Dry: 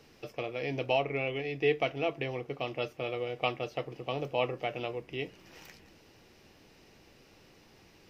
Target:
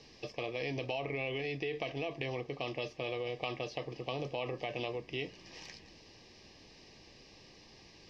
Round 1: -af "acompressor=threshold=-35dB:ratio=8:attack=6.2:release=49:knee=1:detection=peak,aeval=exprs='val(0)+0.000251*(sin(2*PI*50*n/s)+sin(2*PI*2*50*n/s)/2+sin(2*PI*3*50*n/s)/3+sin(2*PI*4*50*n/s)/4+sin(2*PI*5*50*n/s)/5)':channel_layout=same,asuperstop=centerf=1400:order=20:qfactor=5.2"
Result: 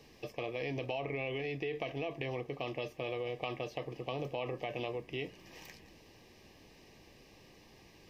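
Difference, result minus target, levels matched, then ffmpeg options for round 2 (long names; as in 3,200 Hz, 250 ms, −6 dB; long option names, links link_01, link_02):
4,000 Hz band −3.0 dB
-af "acompressor=threshold=-35dB:ratio=8:attack=6.2:release=49:knee=1:detection=peak,lowpass=frequency=5100:width_type=q:width=2.4,aeval=exprs='val(0)+0.000251*(sin(2*PI*50*n/s)+sin(2*PI*2*50*n/s)/2+sin(2*PI*3*50*n/s)/3+sin(2*PI*4*50*n/s)/4+sin(2*PI*5*50*n/s)/5)':channel_layout=same,asuperstop=centerf=1400:order=20:qfactor=5.2"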